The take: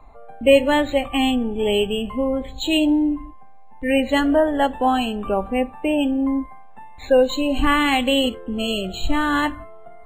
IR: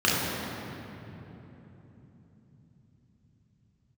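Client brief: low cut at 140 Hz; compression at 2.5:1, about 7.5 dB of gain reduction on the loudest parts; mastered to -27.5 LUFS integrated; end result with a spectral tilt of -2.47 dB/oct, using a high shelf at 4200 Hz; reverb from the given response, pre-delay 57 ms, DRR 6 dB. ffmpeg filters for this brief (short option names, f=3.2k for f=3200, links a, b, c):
-filter_complex "[0:a]highpass=140,highshelf=f=4.2k:g=4,acompressor=threshold=-20dB:ratio=2.5,asplit=2[a][b];[1:a]atrim=start_sample=2205,adelay=57[c];[b][c]afir=irnorm=-1:irlink=0,volume=-23.5dB[d];[a][d]amix=inputs=2:normalize=0,volume=-5dB"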